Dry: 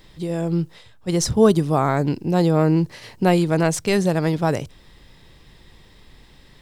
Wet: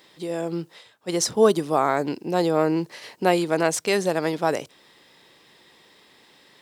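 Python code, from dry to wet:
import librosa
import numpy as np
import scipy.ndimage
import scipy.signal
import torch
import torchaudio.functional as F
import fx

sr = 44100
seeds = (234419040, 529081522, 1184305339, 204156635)

y = scipy.signal.sosfilt(scipy.signal.butter(2, 330.0, 'highpass', fs=sr, output='sos'), x)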